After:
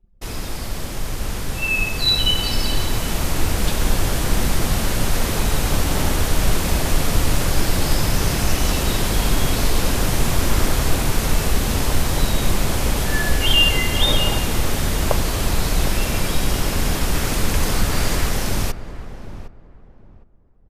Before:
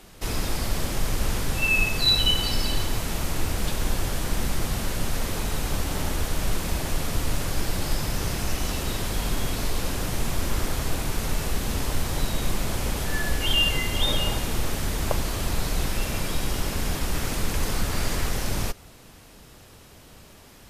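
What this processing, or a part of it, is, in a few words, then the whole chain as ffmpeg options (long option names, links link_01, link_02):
voice memo with heavy noise removal: -filter_complex "[0:a]anlmdn=0.631,dynaudnorm=framelen=290:gausssize=17:maxgain=11.5dB,asplit=2[link_01][link_02];[link_02]adelay=760,lowpass=frequency=1100:poles=1,volume=-12dB,asplit=2[link_03][link_04];[link_04]adelay=760,lowpass=frequency=1100:poles=1,volume=0.24,asplit=2[link_05][link_06];[link_06]adelay=760,lowpass=frequency=1100:poles=1,volume=0.24[link_07];[link_01][link_03][link_05][link_07]amix=inputs=4:normalize=0,volume=-1dB"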